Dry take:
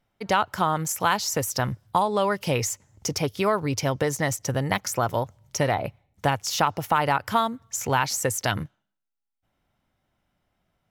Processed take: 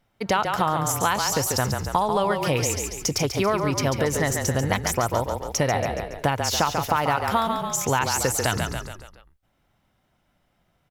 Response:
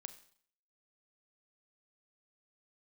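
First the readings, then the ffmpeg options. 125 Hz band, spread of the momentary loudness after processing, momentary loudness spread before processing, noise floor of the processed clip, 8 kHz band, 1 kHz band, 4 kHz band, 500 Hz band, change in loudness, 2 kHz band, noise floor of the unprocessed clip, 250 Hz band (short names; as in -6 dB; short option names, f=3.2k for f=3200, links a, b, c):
+2.0 dB, 4 LU, 6 LU, -69 dBFS, +3.5 dB, +1.0 dB, +2.5 dB, +2.0 dB, +1.5 dB, +1.5 dB, -82 dBFS, +2.0 dB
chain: -filter_complex "[0:a]asplit=6[a][b][c][d][e][f];[b]adelay=140,afreqshift=-31,volume=-6.5dB[g];[c]adelay=280,afreqshift=-62,volume=-13.2dB[h];[d]adelay=420,afreqshift=-93,volume=-20dB[i];[e]adelay=560,afreqshift=-124,volume=-26.7dB[j];[f]adelay=700,afreqshift=-155,volume=-33.5dB[k];[a][g][h][i][j][k]amix=inputs=6:normalize=0,acompressor=threshold=-27dB:ratio=2,volume=5dB"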